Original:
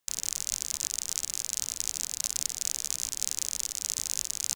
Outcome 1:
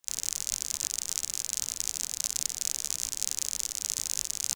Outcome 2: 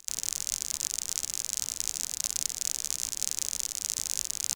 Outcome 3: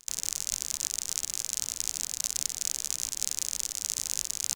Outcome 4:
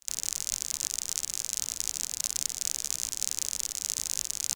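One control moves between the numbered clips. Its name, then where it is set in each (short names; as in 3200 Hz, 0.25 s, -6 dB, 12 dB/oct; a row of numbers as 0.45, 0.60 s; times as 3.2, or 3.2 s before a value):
pre-echo, time: 40, 282, 105, 61 ms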